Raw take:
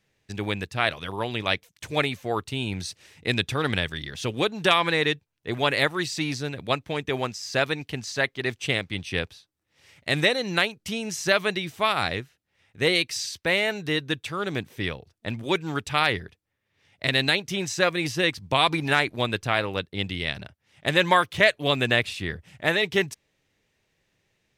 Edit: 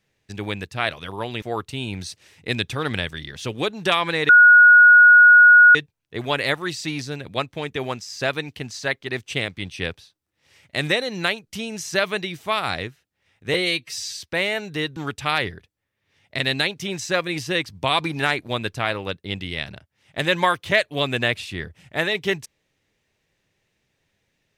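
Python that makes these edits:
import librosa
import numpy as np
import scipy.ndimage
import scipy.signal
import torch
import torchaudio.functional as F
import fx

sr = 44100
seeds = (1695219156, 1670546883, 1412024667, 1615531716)

y = fx.edit(x, sr, fx.cut(start_s=1.42, length_s=0.79),
    fx.insert_tone(at_s=5.08, length_s=1.46, hz=1450.0, db=-6.5),
    fx.stretch_span(start_s=12.87, length_s=0.41, factor=1.5),
    fx.cut(start_s=14.09, length_s=1.56), tone=tone)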